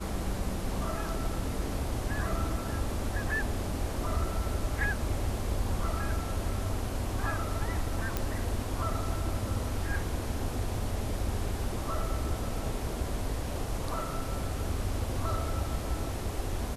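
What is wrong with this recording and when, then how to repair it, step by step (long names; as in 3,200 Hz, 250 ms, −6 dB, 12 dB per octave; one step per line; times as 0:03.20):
0:08.17: click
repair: click removal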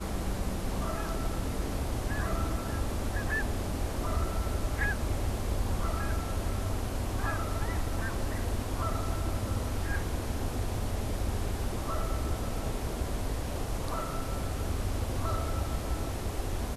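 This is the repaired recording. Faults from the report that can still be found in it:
none of them is left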